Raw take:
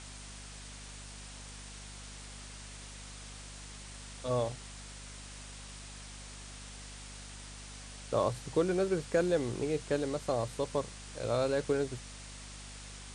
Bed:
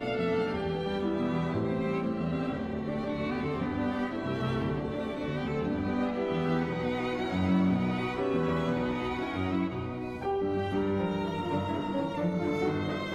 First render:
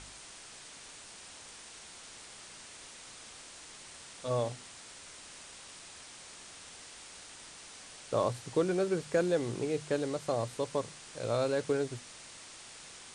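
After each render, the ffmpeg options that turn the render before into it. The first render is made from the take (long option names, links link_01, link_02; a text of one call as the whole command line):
ffmpeg -i in.wav -af "bandreject=frequency=50:width_type=h:width=4,bandreject=frequency=100:width_type=h:width=4,bandreject=frequency=150:width_type=h:width=4,bandreject=frequency=200:width_type=h:width=4,bandreject=frequency=250:width_type=h:width=4" out.wav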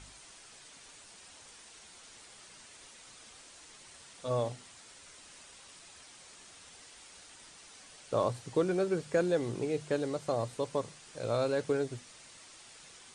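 ffmpeg -i in.wav -af "afftdn=noise_reduction=6:noise_floor=-51" out.wav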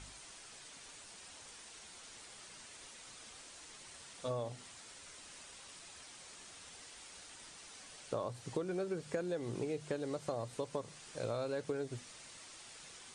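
ffmpeg -i in.wav -af "acompressor=threshold=-35dB:ratio=6" out.wav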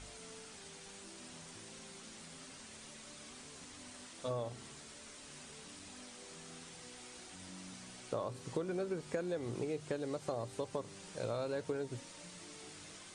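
ffmpeg -i in.wav -i bed.wav -filter_complex "[1:a]volume=-27dB[link_01];[0:a][link_01]amix=inputs=2:normalize=0" out.wav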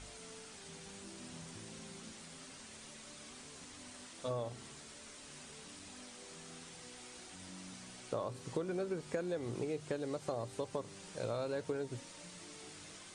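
ffmpeg -i in.wav -filter_complex "[0:a]asettb=1/sr,asplit=3[link_01][link_02][link_03];[link_01]atrim=end=0.684[link_04];[link_02]atrim=start=0.68:end=2.12,asetpts=PTS-STARTPTS,afade=type=in:duration=0.004:curve=qsin,afade=type=out:start_time=1.436:duration=0.004:curve=qsin,equalizer=frequency=130:width_type=o:width=2.3:gain=7[link_05];[link_03]atrim=start=2.116[link_06];[link_04][link_05]acrossfade=duration=0.004:curve1=hsin:curve2=qsin[link_07];[link_07][link_06]acrossfade=duration=0.004:curve1=qsin:curve2=hsin" out.wav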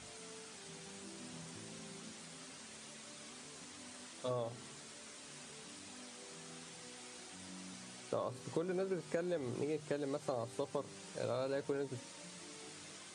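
ffmpeg -i in.wav -af "highpass=110" out.wav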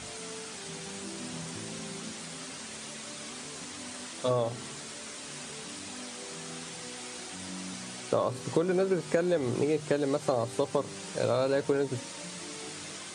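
ffmpeg -i in.wav -af "volume=11dB" out.wav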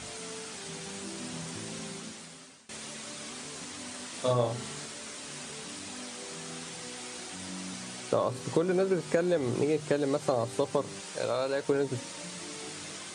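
ffmpeg -i in.wav -filter_complex "[0:a]asettb=1/sr,asplit=3[link_01][link_02][link_03];[link_01]atrim=end=4.094[link_04];[link_02]atrim=start=4.09:end=4.86,asetpts=PTS-STARTPTS,afade=type=in:duration=0.004:curve=qsin,afade=type=out:start_time=0.766:duration=0.004:curve=qsin,asplit=2[link_05][link_06];[link_06]adelay=41,volume=-4dB[link_07];[link_05][link_07]amix=inputs=2:normalize=0,atrim=end_sample=33957[link_08];[link_03]atrim=start=4.856[link_09];[link_04][link_08]acrossfade=duration=0.004:curve1=hsin:curve2=qsin[link_10];[link_10][link_09]acrossfade=duration=0.004:curve1=qsin:curve2=hsin,asettb=1/sr,asplit=3[link_11][link_12][link_13];[link_11]atrim=end=11.004[link_14];[link_12]atrim=start=11:end=11.69,asetpts=PTS-STARTPTS,afade=type=in:duration=0.004:curve=qsin,afade=type=out:start_time=0.686:duration=0.004:curve=qsin,lowshelf=frequency=350:gain=-10[link_15];[link_13]atrim=start=11.686[link_16];[link_14][link_15]acrossfade=duration=0.004:curve1=hsin:curve2=qsin[link_17];[link_17][link_16]acrossfade=duration=0.004:curve1=qsin:curve2=hsin,asplit=2[link_18][link_19];[link_18]atrim=end=2.69,asetpts=PTS-STARTPTS,afade=type=out:start_time=1.84:duration=0.85:silence=0.0841395[link_20];[link_19]atrim=start=2.69,asetpts=PTS-STARTPTS,afade=type=in:duration=0.004:curve=hsin:silence=0.0841395[link_21];[link_20][link_21]concat=n=2:v=0:a=1" out.wav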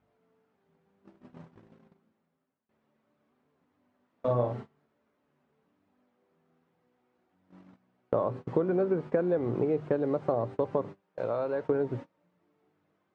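ffmpeg -i in.wav -af "lowpass=1200,agate=range=-27dB:threshold=-38dB:ratio=16:detection=peak" out.wav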